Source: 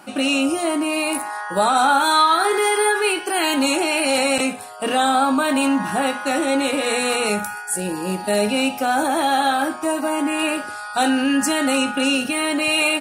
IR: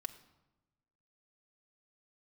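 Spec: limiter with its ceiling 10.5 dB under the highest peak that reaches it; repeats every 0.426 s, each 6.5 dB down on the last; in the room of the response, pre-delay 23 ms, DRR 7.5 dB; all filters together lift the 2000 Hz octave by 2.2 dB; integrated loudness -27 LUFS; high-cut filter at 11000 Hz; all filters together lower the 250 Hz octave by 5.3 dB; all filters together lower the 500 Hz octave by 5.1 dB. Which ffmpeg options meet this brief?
-filter_complex "[0:a]lowpass=11k,equalizer=f=250:t=o:g=-4.5,equalizer=f=500:t=o:g=-5.5,equalizer=f=2k:t=o:g=3.5,alimiter=limit=-15.5dB:level=0:latency=1,aecho=1:1:426|852|1278|1704|2130|2556:0.473|0.222|0.105|0.0491|0.0231|0.0109,asplit=2[a][b];[1:a]atrim=start_sample=2205,adelay=23[c];[b][c]afir=irnorm=-1:irlink=0,volume=-5dB[d];[a][d]amix=inputs=2:normalize=0,volume=-4.5dB"

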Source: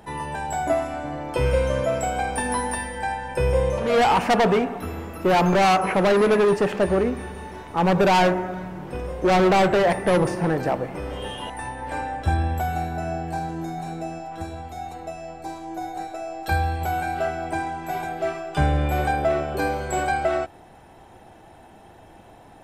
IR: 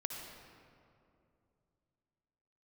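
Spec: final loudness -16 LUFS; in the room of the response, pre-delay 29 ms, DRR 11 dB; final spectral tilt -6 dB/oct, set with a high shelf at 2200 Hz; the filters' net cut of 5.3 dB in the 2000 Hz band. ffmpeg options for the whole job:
-filter_complex "[0:a]equalizer=f=2k:t=o:g=-4.5,highshelf=f=2.2k:g=-5,asplit=2[a][b];[1:a]atrim=start_sample=2205,adelay=29[c];[b][c]afir=irnorm=-1:irlink=0,volume=-11dB[d];[a][d]amix=inputs=2:normalize=0,volume=8dB"

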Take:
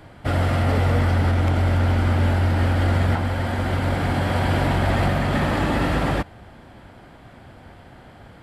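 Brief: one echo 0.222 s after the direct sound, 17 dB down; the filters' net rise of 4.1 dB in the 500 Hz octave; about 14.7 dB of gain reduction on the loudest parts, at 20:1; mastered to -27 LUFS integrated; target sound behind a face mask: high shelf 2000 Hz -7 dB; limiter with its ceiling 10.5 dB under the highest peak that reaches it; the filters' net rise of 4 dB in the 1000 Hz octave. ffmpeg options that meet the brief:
-af "equalizer=f=500:t=o:g=4,equalizer=f=1k:t=o:g=5.5,acompressor=threshold=-29dB:ratio=20,alimiter=level_in=5dB:limit=-24dB:level=0:latency=1,volume=-5dB,highshelf=f=2k:g=-7,aecho=1:1:222:0.141,volume=12dB"

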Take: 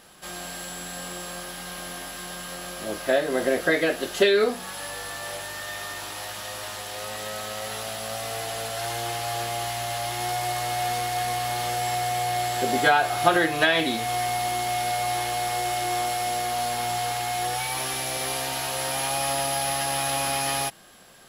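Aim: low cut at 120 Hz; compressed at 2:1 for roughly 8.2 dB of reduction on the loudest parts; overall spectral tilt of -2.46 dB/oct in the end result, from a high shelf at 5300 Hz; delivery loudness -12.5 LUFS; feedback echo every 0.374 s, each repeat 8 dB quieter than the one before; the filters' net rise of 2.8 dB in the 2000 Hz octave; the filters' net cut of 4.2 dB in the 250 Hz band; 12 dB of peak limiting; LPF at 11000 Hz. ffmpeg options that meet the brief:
-af "highpass=120,lowpass=11k,equalizer=f=250:t=o:g=-6,equalizer=f=2k:t=o:g=3,highshelf=f=5.3k:g=4.5,acompressor=threshold=-29dB:ratio=2,alimiter=limit=-23dB:level=0:latency=1,aecho=1:1:374|748|1122|1496|1870:0.398|0.159|0.0637|0.0255|0.0102,volume=18.5dB"

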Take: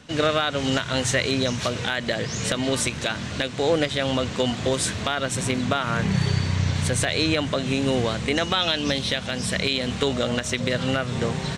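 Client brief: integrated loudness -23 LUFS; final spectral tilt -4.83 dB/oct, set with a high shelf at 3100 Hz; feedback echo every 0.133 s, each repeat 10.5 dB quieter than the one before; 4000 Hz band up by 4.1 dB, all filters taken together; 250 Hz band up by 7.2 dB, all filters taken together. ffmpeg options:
-af "equalizer=f=250:t=o:g=8.5,highshelf=f=3.1k:g=-4.5,equalizer=f=4k:t=o:g=8,aecho=1:1:133|266|399:0.299|0.0896|0.0269,volume=-3dB"

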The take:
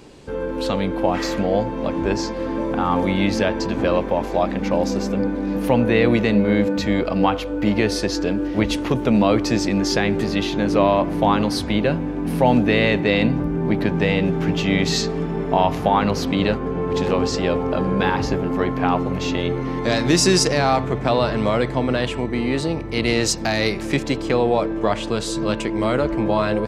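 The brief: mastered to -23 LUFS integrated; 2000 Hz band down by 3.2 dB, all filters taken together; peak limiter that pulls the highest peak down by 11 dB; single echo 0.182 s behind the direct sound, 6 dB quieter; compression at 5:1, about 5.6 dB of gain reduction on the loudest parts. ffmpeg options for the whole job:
-af "equalizer=f=2k:t=o:g=-4,acompressor=threshold=-18dB:ratio=5,alimiter=limit=-18.5dB:level=0:latency=1,aecho=1:1:182:0.501,volume=3.5dB"

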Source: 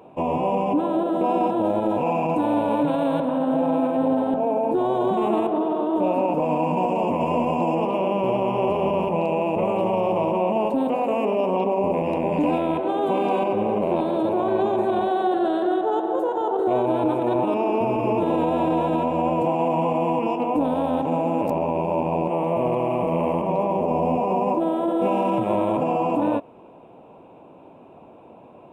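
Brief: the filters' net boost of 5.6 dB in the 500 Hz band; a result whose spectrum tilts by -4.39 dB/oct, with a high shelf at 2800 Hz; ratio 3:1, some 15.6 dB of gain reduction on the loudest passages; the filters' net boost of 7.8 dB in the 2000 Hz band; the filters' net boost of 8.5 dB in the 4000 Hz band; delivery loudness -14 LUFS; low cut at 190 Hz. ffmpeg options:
-af "highpass=190,equalizer=f=500:t=o:g=6.5,equalizer=f=2k:t=o:g=5.5,highshelf=f=2.8k:g=6.5,equalizer=f=4k:t=o:g=4,acompressor=threshold=-36dB:ratio=3,volume=19.5dB"

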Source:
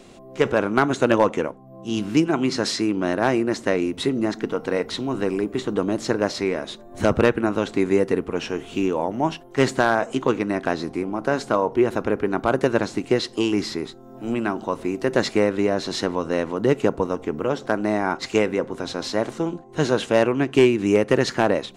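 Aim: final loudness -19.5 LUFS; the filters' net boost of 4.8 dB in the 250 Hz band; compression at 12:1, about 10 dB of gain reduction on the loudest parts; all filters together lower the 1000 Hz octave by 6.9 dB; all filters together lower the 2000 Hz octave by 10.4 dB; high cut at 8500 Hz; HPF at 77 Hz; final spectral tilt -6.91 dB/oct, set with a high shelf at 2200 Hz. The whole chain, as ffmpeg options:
-af "highpass=77,lowpass=8.5k,equalizer=f=250:t=o:g=7,equalizer=f=1k:t=o:g=-7,equalizer=f=2k:t=o:g=-8,highshelf=f=2.2k:g=-6.5,acompressor=threshold=-19dB:ratio=12,volume=6.5dB"

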